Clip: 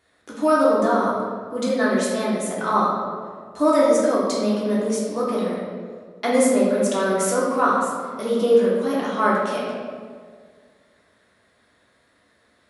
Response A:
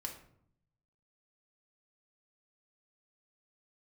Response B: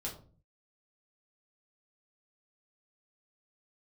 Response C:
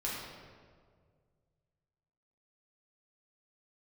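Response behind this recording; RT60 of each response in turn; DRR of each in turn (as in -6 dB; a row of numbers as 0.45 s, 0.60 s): C; 0.65 s, 0.40 s, 1.9 s; 1.0 dB, -4.0 dB, -7.0 dB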